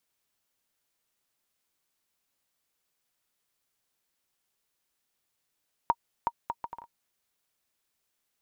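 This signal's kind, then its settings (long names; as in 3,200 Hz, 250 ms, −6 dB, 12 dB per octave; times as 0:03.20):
bouncing ball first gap 0.37 s, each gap 0.62, 939 Hz, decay 50 ms −11.5 dBFS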